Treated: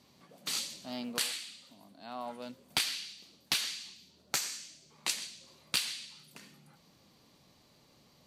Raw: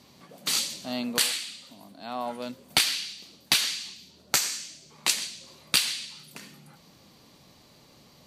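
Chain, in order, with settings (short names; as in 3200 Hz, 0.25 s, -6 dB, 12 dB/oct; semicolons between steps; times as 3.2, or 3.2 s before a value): Doppler distortion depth 0.13 ms; gain -8 dB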